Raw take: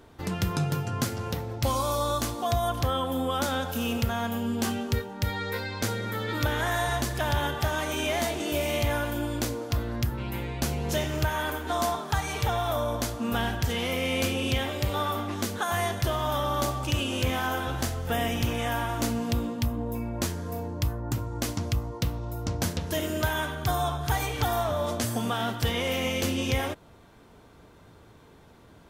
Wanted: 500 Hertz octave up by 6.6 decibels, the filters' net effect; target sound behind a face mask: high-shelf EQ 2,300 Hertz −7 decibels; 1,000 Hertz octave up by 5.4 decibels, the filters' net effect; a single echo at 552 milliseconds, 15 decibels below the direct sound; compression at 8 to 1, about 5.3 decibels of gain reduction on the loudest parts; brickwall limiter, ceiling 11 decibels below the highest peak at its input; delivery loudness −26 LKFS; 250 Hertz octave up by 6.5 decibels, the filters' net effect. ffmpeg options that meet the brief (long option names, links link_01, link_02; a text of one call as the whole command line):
ffmpeg -i in.wav -af "equalizer=frequency=250:width_type=o:gain=6,equalizer=frequency=500:width_type=o:gain=5.5,equalizer=frequency=1000:width_type=o:gain=6,acompressor=threshold=-23dB:ratio=8,alimiter=limit=-22.5dB:level=0:latency=1,highshelf=frequency=2300:gain=-7,aecho=1:1:552:0.178,volume=5.5dB" out.wav